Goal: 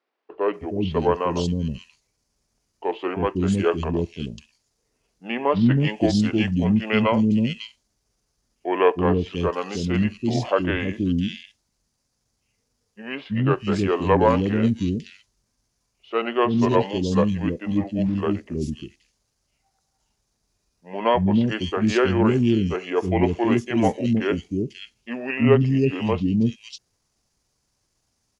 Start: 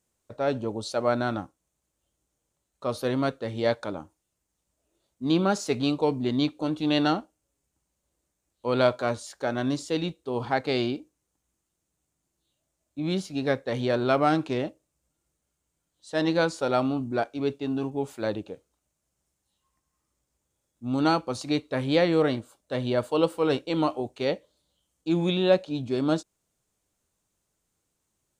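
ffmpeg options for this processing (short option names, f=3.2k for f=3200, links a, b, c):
-filter_complex "[0:a]acrossover=split=470|4200[a][b][c];[a]adelay=320[d];[c]adelay=540[e];[d][b][e]amix=inputs=3:normalize=0,asetrate=32097,aresample=44100,atempo=1.37395,volume=7dB"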